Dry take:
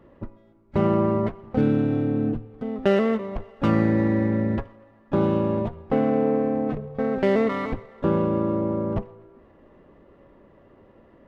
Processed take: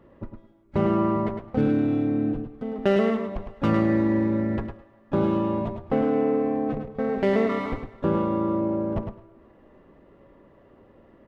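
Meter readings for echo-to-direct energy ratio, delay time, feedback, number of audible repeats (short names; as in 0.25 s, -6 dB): -7.0 dB, 0.106 s, 16%, 2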